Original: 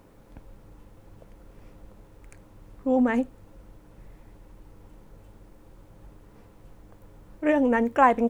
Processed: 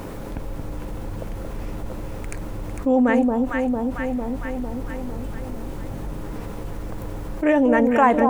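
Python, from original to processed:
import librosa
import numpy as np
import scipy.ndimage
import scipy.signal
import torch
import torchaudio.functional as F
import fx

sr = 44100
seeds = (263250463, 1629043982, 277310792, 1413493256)

y = fx.echo_alternate(x, sr, ms=226, hz=930.0, feedback_pct=71, wet_db=-4.5)
y = fx.env_flatten(y, sr, amount_pct=50)
y = y * librosa.db_to_amplitude(1.0)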